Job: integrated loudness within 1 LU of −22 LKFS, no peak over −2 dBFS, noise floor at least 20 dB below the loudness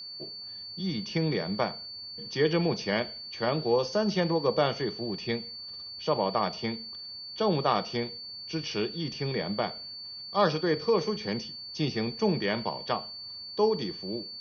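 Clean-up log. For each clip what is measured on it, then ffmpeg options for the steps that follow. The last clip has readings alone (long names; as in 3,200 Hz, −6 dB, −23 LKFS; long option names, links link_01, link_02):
interfering tone 4,500 Hz; level of the tone −39 dBFS; integrated loudness −30.0 LKFS; sample peak −10.5 dBFS; target loudness −22.0 LKFS
→ -af "bandreject=frequency=4500:width=30"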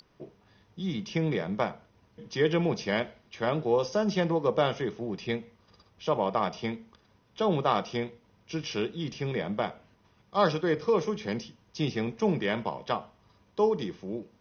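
interfering tone none found; integrated loudness −30.0 LKFS; sample peak −11.0 dBFS; target loudness −22.0 LKFS
→ -af "volume=8dB"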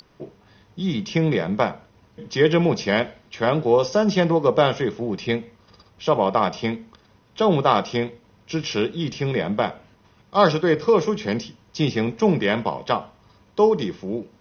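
integrated loudness −22.0 LKFS; sample peak −3.0 dBFS; background noise floor −57 dBFS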